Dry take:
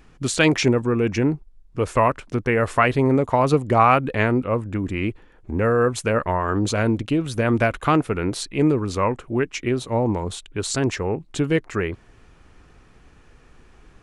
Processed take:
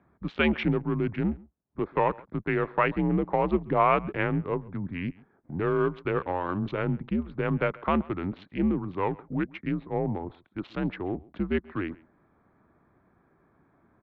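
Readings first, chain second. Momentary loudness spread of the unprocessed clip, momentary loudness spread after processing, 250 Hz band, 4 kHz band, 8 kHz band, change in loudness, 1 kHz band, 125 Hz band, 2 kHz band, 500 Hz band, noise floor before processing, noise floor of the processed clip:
9 LU, 10 LU, −6.5 dB, −12.5 dB, below −40 dB, −7.5 dB, −7.0 dB, −8.0 dB, −8.0 dB, −7.5 dB, −52 dBFS, −66 dBFS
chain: adaptive Wiener filter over 15 samples
single-sideband voice off tune −89 Hz 180–3,400 Hz
on a send: single-tap delay 135 ms −23.5 dB
on the sum: level −6 dB

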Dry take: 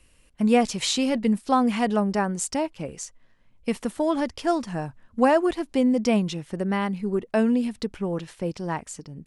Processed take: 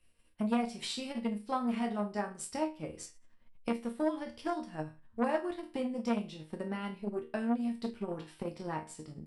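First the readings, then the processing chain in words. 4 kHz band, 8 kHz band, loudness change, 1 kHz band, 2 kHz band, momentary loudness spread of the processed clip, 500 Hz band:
−12.0 dB, −14.0 dB, −11.5 dB, −11.0 dB, −11.5 dB, 10 LU, −11.5 dB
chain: camcorder AGC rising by 9.9 dB per second
resonators tuned to a chord D#2 sus4, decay 0.36 s
transient designer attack +4 dB, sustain −4 dB
parametric band 6,600 Hz −12 dB 0.22 octaves
saturating transformer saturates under 690 Hz

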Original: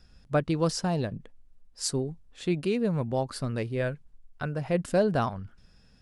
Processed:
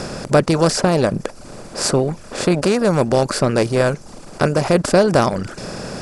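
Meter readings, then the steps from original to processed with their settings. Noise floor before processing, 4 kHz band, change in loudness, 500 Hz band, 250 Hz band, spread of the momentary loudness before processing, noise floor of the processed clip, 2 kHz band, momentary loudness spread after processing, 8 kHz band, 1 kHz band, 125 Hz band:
−58 dBFS, +13.5 dB, +12.0 dB, +13.0 dB, +11.0 dB, 11 LU, −38 dBFS, +13.0 dB, 14 LU, +13.0 dB, +13.0 dB, +10.0 dB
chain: compressor on every frequency bin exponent 0.4
reverb reduction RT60 0.61 s
level +8 dB

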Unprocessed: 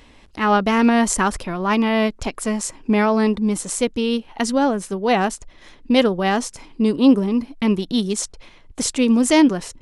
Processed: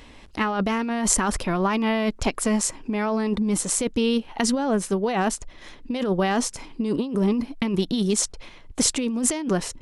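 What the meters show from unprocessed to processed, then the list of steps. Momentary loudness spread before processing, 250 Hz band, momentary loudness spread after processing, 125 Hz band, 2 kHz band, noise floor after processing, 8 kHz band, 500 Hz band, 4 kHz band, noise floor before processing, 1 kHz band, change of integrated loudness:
10 LU, −6.0 dB, 5 LU, −1.0 dB, −5.5 dB, −46 dBFS, +2.0 dB, −5.0 dB, −3.5 dB, −48 dBFS, −6.0 dB, −4.5 dB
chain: compressor whose output falls as the input rises −21 dBFS, ratio −1
level −1.5 dB

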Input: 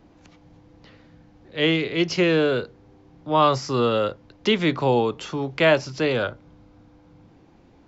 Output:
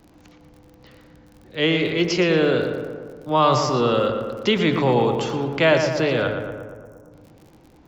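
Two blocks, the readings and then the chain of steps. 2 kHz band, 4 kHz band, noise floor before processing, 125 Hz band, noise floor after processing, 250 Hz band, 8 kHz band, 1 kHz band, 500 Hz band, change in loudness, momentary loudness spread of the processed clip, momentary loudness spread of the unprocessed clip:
+1.5 dB, +1.5 dB, −54 dBFS, +3.0 dB, −51 dBFS, +2.0 dB, can't be measured, +2.0 dB, +2.0 dB, +1.5 dB, 14 LU, 10 LU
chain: surface crackle 47 per second −39 dBFS
transient designer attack +1 dB, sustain +5 dB
gain on a spectral selection 0:06.44–0:07.12, 1,300–5,300 Hz −18 dB
on a send: feedback echo with a low-pass in the loop 116 ms, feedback 67%, low-pass 2,300 Hz, level −5.5 dB

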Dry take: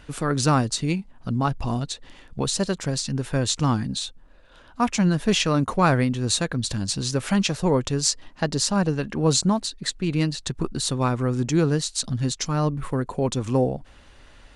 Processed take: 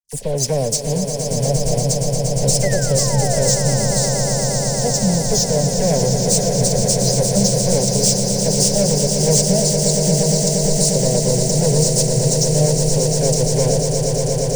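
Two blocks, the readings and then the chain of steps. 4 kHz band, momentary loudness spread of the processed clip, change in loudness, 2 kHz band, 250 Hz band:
+6.5 dB, 4 LU, +7.5 dB, −1.0 dB, +3.5 dB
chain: spectral magnitudes quantised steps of 30 dB
elliptic band-stop filter 590–5,200 Hz
noise gate −48 dBFS, range −24 dB
parametric band 250 Hz −13 dB 0.69 octaves
leveller curve on the samples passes 5
sound drawn into the spectrogram fall, 0:02.61–0:03.50, 480–2,100 Hz −19 dBFS
phaser with its sweep stopped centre 330 Hz, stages 6
all-pass dispersion lows, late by 41 ms, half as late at 1,800 Hz
on a send: echo that builds up and dies away 117 ms, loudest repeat 8, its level −9 dB
on the sum: level −5.5 dB

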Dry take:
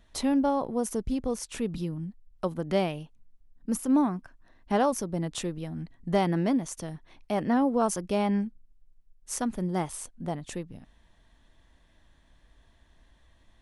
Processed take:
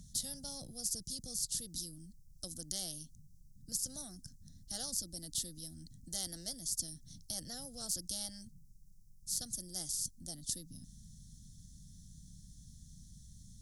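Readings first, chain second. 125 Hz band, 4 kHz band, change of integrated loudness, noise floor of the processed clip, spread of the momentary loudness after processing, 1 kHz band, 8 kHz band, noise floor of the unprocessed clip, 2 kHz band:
−16.5 dB, +1.0 dB, −10.0 dB, −59 dBFS, 20 LU, −28.0 dB, +2.5 dB, −62 dBFS, −22.0 dB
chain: harmonic generator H 7 −39 dB, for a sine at −12 dBFS
elliptic band-stop filter 170–5,600 Hz, stop band 40 dB
every bin compressed towards the loudest bin 10 to 1
level +1.5 dB

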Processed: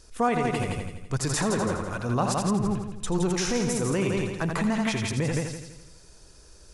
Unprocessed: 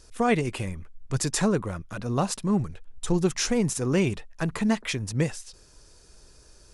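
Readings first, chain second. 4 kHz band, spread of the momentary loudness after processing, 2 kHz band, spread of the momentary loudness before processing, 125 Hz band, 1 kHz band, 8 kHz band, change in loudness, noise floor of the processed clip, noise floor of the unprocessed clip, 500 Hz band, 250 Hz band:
0.0 dB, 7 LU, +1.0 dB, 11 LU, 0.0 dB, +3.5 dB, −0.5 dB, 0.0 dB, −52 dBFS, −54 dBFS, +0.5 dB, −0.5 dB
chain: on a send: echo machine with several playback heads 83 ms, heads first and second, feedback 44%, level −7.5 dB
on the sum: brickwall limiter −17.5 dBFS, peak gain reduction 8 dB
dynamic equaliser 970 Hz, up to +5 dB, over −42 dBFS, Q 0.88

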